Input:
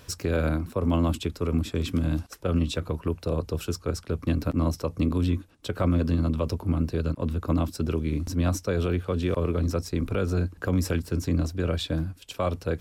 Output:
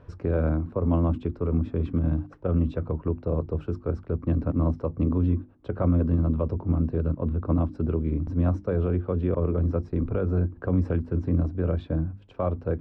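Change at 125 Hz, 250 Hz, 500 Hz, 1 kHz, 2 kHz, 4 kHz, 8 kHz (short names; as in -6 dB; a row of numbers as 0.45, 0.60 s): +1.5 dB, +0.5 dB, +0.5 dB, -2.5 dB, -8.0 dB, under -20 dB, under -30 dB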